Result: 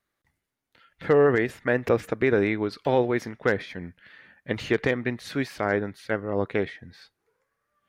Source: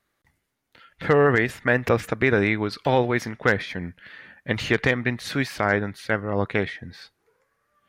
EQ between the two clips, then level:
dynamic equaliser 390 Hz, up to +7 dB, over −34 dBFS, Q 0.83
−6.5 dB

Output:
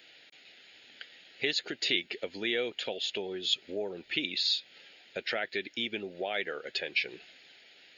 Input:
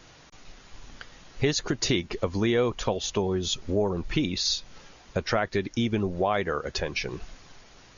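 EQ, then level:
high-pass filter 380 Hz 12 dB per octave
tilt shelving filter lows −5.5 dB, about 1,500 Hz
phaser with its sweep stopped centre 2,600 Hz, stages 4
0.0 dB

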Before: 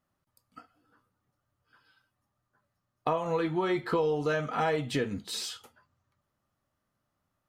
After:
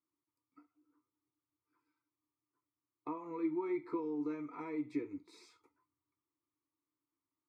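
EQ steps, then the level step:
formant filter u
phaser with its sweep stopped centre 810 Hz, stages 6
+6.0 dB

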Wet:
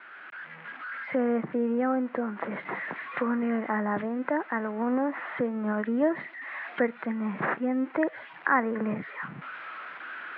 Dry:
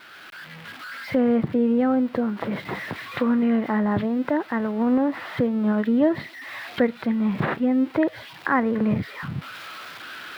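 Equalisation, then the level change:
high-pass filter 150 Hz 24 dB per octave
low-pass filter 2,000 Hz 24 dB per octave
spectral tilt +3 dB per octave
−1.5 dB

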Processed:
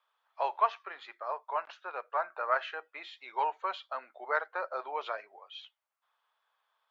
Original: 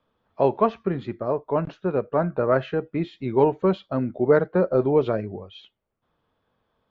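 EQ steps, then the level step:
high-pass filter 850 Hz 24 dB per octave
−1.0 dB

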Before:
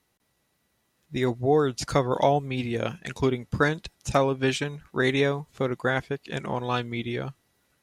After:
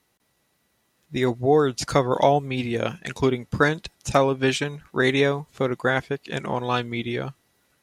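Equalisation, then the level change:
low-shelf EQ 120 Hz −4.5 dB
+3.5 dB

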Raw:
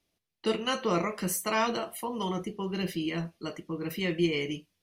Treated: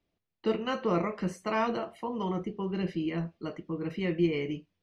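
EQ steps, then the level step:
high-shelf EQ 4,300 Hz +7 dB
dynamic equaliser 3,400 Hz, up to −6 dB, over −53 dBFS, Q 5.4
head-to-tape spacing loss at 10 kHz 33 dB
+1.5 dB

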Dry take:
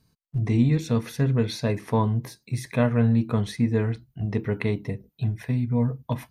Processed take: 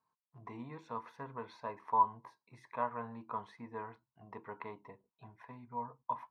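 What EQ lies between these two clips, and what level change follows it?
resonant band-pass 1,000 Hz, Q 7.3
+3.5 dB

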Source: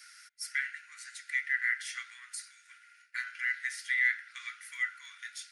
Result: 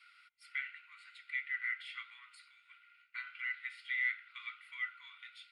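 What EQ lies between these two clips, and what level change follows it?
low-pass filter 3,100 Hz 12 dB per octave
phaser with its sweep stopped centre 1,700 Hz, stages 6
+1.0 dB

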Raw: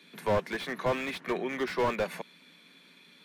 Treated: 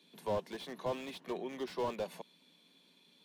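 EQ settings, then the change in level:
low-shelf EQ 99 Hz −7 dB
flat-topped bell 1,700 Hz −9.5 dB 1.2 octaves
−7.0 dB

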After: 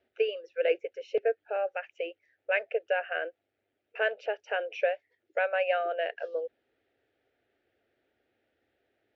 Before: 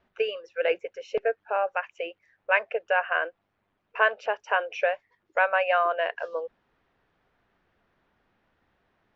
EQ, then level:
high-pass filter 120 Hz 12 dB per octave
high-frequency loss of the air 130 metres
phaser with its sweep stopped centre 430 Hz, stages 4
0.0 dB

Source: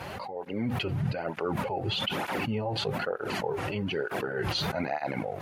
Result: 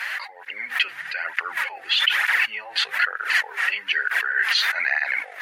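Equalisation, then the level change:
high-pass with resonance 1,800 Hz, resonance Q 5.1
+8.0 dB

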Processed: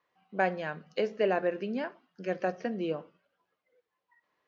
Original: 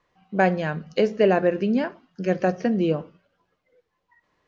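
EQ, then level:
high-pass filter 470 Hz 6 dB per octave
high-frequency loss of the air 81 metres
−5.5 dB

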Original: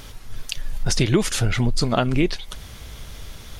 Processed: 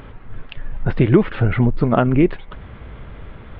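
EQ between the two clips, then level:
Gaussian smoothing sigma 4.3 samples
low-shelf EQ 74 Hz −8 dB
parametric band 720 Hz −2.5 dB
+7.0 dB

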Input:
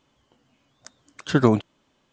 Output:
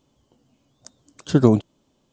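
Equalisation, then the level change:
parametric band 1,800 Hz −13 dB 2 octaves
+4.0 dB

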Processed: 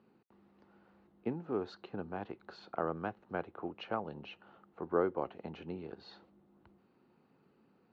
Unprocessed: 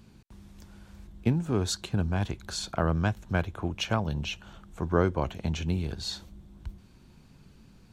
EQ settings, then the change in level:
high-frequency loss of the air 350 metres
loudspeaker in its box 470–6,200 Hz, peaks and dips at 630 Hz −7 dB, 1,000 Hz −7 dB, 1,600 Hz −8 dB, 2,300 Hz −8 dB, 3,400 Hz −10 dB, 5,500 Hz −5 dB
high-shelf EQ 3,500 Hz −11 dB
+2.0 dB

